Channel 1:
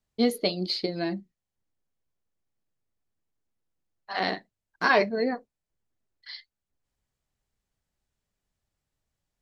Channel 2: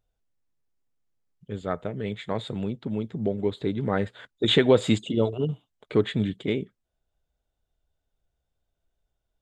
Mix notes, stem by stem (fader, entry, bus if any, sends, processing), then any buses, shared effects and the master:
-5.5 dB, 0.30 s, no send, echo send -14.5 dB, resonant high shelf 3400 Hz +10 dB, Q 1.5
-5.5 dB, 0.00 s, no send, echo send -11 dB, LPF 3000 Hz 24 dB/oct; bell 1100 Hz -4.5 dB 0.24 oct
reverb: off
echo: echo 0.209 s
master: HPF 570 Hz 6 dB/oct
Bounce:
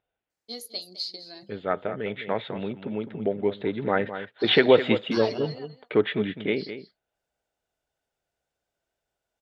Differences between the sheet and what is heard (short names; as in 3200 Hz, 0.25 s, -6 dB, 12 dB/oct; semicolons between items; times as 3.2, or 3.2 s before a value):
stem 1 -5.5 dB -> -13.0 dB; stem 2 -5.5 dB -> +6.0 dB